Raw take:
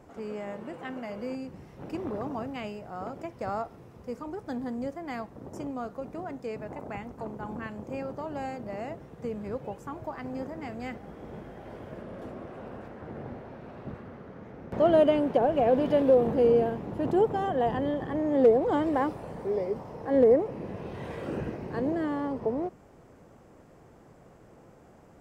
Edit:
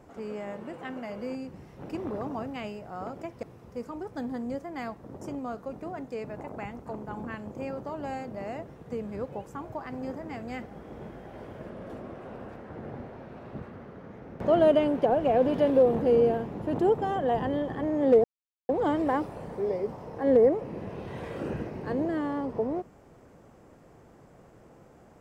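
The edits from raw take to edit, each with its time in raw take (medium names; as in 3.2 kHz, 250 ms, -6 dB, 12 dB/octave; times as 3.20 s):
3.43–3.75 s: delete
18.56 s: insert silence 0.45 s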